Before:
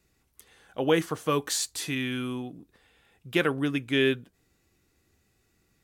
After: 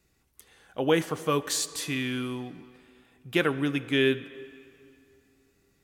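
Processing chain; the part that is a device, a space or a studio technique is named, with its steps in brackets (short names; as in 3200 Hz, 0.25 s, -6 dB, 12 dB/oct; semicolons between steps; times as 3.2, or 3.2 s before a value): filtered reverb send (on a send: HPF 160 Hz 24 dB/oct + LPF 8800 Hz + reverb RT60 2.7 s, pre-delay 34 ms, DRR 15 dB)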